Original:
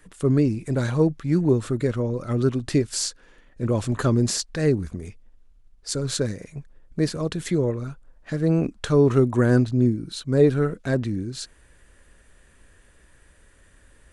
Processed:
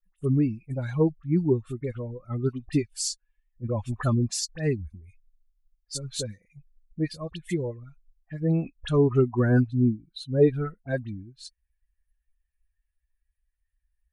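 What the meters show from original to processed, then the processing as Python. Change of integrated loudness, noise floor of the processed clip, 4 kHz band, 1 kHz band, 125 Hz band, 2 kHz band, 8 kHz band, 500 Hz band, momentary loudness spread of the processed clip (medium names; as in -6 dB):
-4.0 dB, -80 dBFS, -4.5 dB, -4.5 dB, -3.5 dB, -5.0 dB, -4.0 dB, -4.5 dB, 17 LU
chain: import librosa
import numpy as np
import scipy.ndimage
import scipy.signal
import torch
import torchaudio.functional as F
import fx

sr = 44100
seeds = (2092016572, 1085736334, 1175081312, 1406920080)

y = fx.bin_expand(x, sr, power=2.0)
y = fx.dispersion(y, sr, late='highs', ms=44.0, hz=1800.0)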